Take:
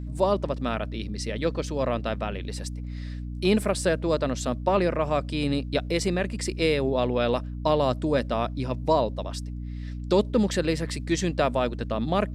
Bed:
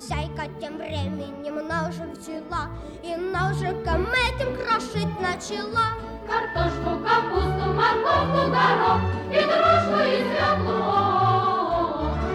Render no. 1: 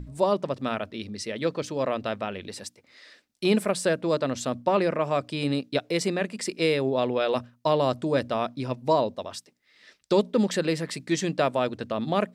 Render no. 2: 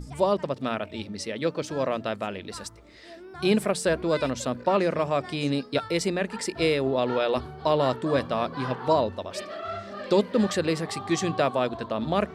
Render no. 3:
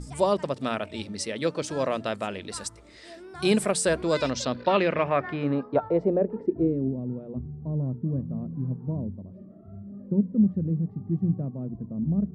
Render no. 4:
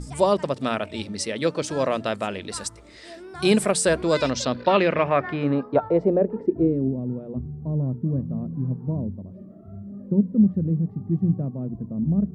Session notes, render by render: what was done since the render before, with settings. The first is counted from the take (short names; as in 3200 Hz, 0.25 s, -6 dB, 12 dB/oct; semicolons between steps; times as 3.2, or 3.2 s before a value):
notches 60/120/180/240/300 Hz
add bed -16.5 dB
low-pass sweep 9100 Hz -> 180 Hz, 3.98–7.01
gain +3.5 dB